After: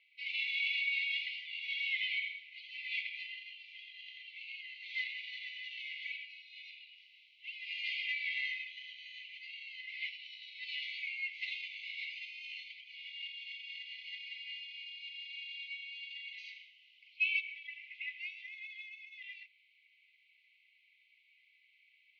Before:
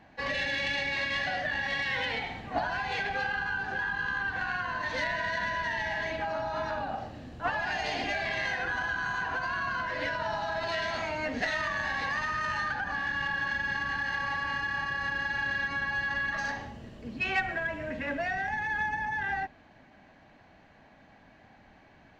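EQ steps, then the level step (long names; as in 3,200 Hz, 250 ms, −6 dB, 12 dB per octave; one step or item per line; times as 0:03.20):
linear-phase brick-wall high-pass 2,000 Hz
low-pass filter 3,300 Hz 24 dB per octave
+1.0 dB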